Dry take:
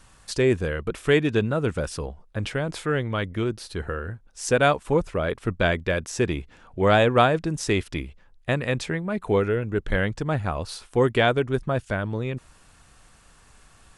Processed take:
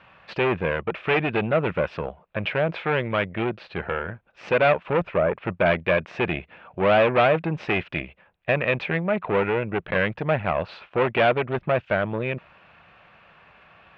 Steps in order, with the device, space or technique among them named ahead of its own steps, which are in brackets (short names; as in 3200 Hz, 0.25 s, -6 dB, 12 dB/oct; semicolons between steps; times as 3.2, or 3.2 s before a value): guitar amplifier (tube stage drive 23 dB, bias 0.55; tone controls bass -8 dB, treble -11 dB; speaker cabinet 89–3400 Hz, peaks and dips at 170 Hz +5 dB, 280 Hz -7 dB, 420 Hz -3 dB, 610 Hz +5 dB, 2500 Hz +7 dB); 5.09–5.66 treble ducked by the level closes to 1400 Hz, closed at -24.5 dBFS; gain +8 dB